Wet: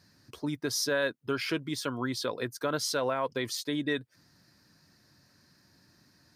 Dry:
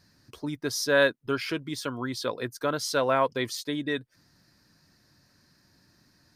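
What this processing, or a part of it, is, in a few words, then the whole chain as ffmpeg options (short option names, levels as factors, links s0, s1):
stacked limiters: -af "alimiter=limit=0.178:level=0:latency=1:release=286,alimiter=limit=0.1:level=0:latency=1:release=54,highpass=65"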